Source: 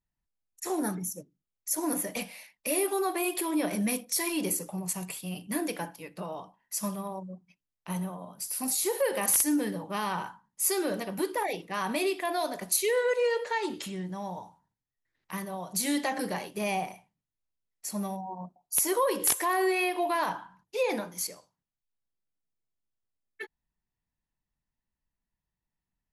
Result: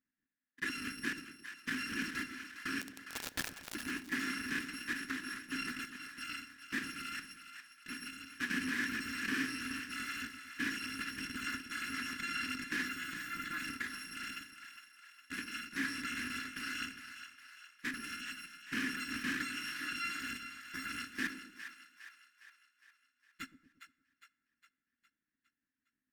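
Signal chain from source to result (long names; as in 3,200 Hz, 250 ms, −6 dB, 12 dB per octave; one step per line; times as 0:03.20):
samples in bit-reversed order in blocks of 256 samples
in parallel at +3 dB: compressor whose output falls as the input rises −33 dBFS, ratio −0.5
on the sum: harmonic generator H 3 −20 dB, 5 −23 dB, 8 −12 dB, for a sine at −10 dBFS
pair of resonant band-passes 670 Hz, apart 2.7 octaves
0:02.81–0:03.75: bit-depth reduction 6 bits, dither none
on a send: echo with a time of its own for lows and highs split 660 Hz, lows 116 ms, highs 409 ms, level −10 dB
on the sum: dense smooth reverb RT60 0.97 s, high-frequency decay 0.6×, DRR 18.5 dB
level +5 dB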